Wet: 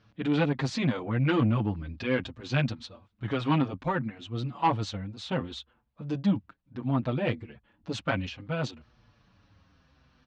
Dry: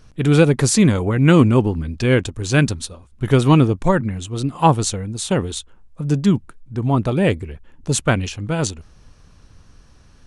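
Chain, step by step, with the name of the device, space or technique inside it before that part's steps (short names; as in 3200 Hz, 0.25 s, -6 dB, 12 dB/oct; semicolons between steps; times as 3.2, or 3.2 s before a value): barber-pole flanger into a guitar amplifier (endless flanger 6.6 ms -0.65 Hz; soft clip -10.5 dBFS, distortion -16 dB; speaker cabinet 85–4300 Hz, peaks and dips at 86 Hz -4 dB, 160 Hz -4 dB, 400 Hz -9 dB); gain -4.5 dB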